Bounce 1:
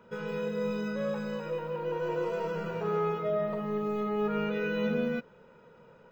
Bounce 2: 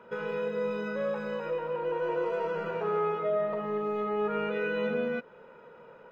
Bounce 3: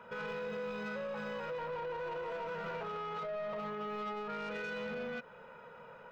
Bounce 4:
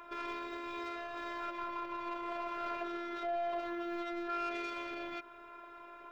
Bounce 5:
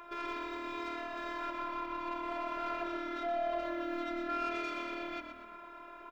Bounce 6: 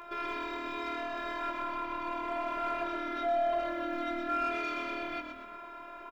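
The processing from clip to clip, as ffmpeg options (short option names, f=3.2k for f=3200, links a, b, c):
-filter_complex "[0:a]bass=f=250:g=-11,treble=f=4k:g=-13,asplit=2[a][b];[b]acompressor=threshold=-40dB:ratio=6,volume=0dB[c];[a][c]amix=inputs=2:normalize=0"
-af "equalizer=f=340:w=1.5:g=-12,alimiter=level_in=7.5dB:limit=-24dB:level=0:latency=1:release=54,volume=-7.5dB,asoftclip=type=tanh:threshold=-37.5dB,volume=2.5dB"
-af "afftfilt=real='hypot(re,im)*cos(PI*b)':imag='0':win_size=512:overlap=0.75,volume=6.5dB"
-filter_complex "[0:a]asplit=5[a][b][c][d][e];[b]adelay=121,afreqshift=-39,volume=-8dB[f];[c]adelay=242,afreqshift=-78,volume=-16.2dB[g];[d]adelay=363,afreqshift=-117,volume=-24.4dB[h];[e]adelay=484,afreqshift=-156,volume=-32.5dB[i];[a][f][g][h][i]amix=inputs=5:normalize=0,volume=1dB"
-filter_complex "[0:a]asplit=2[a][b];[b]volume=31.5dB,asoftclip=hard,volume=-31.5dB,volume=-6.5dB[c];[a][c]amix=inputs=2:normalize=0,asplit=2[d][e];[e]adelay=19,volume=-9dB[f];[d][f]amix=inputs=2:normalize=0"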